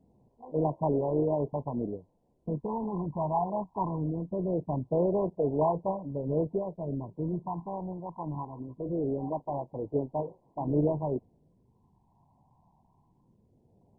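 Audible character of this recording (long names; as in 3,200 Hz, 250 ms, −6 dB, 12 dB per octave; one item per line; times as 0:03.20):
a quantiser's noise floor 10 bits, dither triangular
phaser sweep stages 8, 0.22 Hz, lowest notch 430–2,500 Hz
MP2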